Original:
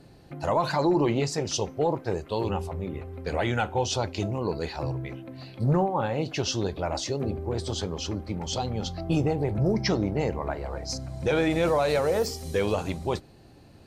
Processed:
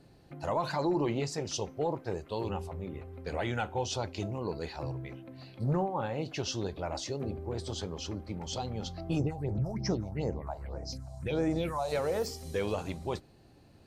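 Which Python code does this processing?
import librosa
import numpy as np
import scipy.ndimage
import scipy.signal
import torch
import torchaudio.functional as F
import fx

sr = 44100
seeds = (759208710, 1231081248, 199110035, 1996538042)

y = fx.phaser_stages(x, sr, stages=4, low_hz=310.0, high_hz=3400.0, hz=fx.line((9.18, 3.5), (11.91, 1.1)), feedback_pct=45, at=(9.18, 11.91), fade=0.02)
y = F.gain(torch.from_numpy(y), -6.5).numpy()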